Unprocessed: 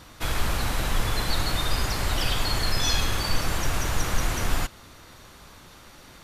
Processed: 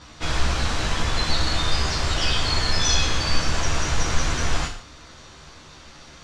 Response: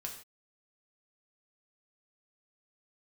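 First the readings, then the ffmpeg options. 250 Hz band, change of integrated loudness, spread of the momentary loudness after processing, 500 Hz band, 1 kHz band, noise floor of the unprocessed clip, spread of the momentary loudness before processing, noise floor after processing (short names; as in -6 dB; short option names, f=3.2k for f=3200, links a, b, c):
+2.5 dB, +3.5 dB, 6 LU, +2.5 dB, +2.5 dB, -49 dBFS, 4 LU, -46 dBFS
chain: -filter_complex "[0:a]lowpass=f=6.6k:w=0.5412,lowpass=f=6.6k:w=1.3066,asplit=2[a][b];[b]highshelf=f=4.7k:g=11[c];[1:a]atrim=start_sample=2205,adelay=13[d];[c][d]afir=irnorm=-1:irlink=0,volume=0.5dB[e];[a][e]amix=inputs=2:normalize=0"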